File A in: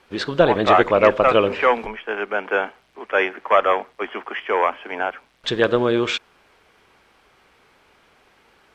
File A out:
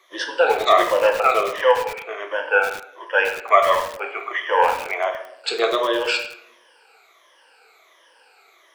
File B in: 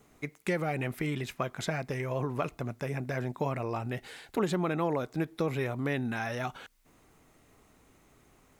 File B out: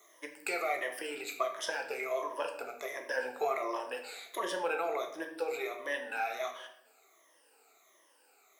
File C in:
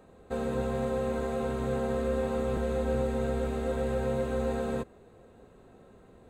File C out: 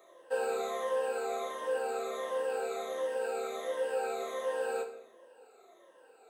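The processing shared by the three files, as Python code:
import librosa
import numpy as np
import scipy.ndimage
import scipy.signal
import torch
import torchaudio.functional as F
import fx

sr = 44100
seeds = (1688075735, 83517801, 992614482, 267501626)

y = fx.spec_ripple(x, sr, per_octave=1.2, drift_hz=-1.4, depth_db=17)
y = scipy.signal.sosfilt(scipy.signal.butter(4, 440.0, 'highpass', fs=sr, output='sos'), y)
y = fx.high_shelf(y, sr, hz=3600.0, db=5.0)
y = fx.rider(y, sr, range_db=5, speed_s=2.0)
y = fx.room_shoebox(y, sr, seeds[0], volume_m3=160.0, walls='mixed', distance_m=0.72)
y = fx.echo_crushed(y, sr, ms=102, feedback_pct=80, bits=2, wet_db=-13.5)
y = y * 10.0 ** (-6.0 / 20.0)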